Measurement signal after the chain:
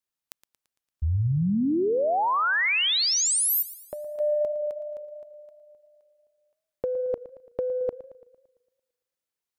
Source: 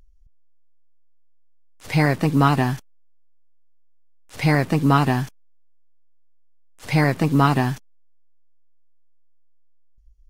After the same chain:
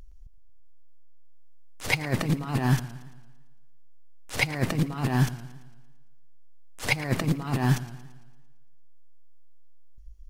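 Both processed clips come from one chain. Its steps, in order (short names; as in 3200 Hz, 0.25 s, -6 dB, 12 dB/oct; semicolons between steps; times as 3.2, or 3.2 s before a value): negative-ratio compressor -24 dBFS, ratio -0.5; warbling echo 0.113 s, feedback 53%, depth 109 cents, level -16 dB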